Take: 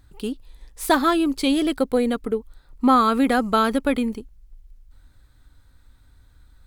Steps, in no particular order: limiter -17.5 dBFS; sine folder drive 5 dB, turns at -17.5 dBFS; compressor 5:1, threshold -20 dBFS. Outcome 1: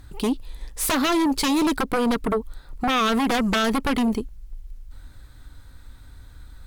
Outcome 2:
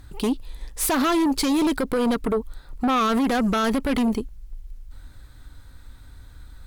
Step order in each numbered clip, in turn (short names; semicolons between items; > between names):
compressor > sine folder > limiter; limiter > compressor > sine folder